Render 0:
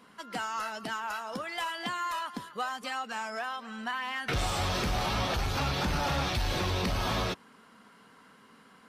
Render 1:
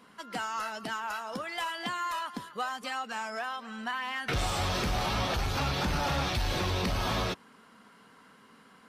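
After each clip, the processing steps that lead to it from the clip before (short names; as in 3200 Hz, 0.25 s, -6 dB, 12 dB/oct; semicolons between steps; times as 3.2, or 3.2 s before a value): nothing audible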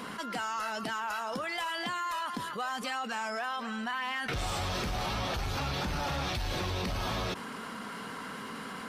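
fast leveller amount 70%; gain -5 dB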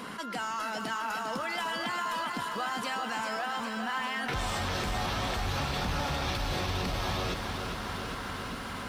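lo-fi delay 0.402 s, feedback 80%, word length 10-bit, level -7 dB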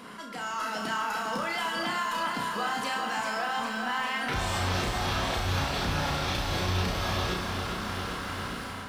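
AGC gain up to 6.5 dB; flutter echo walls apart 5.7 m, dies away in 0.42 s; gain -5.5 dB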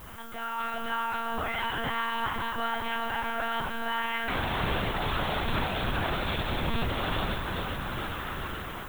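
monotone LPC vocoder at 8 kHz 230 Hz; added noise violet -52 dBFS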